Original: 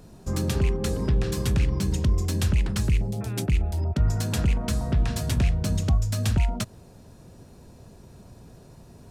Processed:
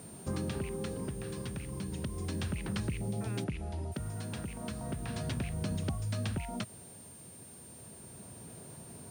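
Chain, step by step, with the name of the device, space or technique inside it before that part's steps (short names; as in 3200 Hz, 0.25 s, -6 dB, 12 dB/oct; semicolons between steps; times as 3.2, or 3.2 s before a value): medium wave at night (BPF 110–4000 Hz; compressor, threshold -31 dBFS, peak gain reduction 10 dB; tremolo 0.34 Hz, depth 46%; whine 9000 Hz -51 dBFS; white noise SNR 23 dB); 3.44–3.92 air absorption 56 m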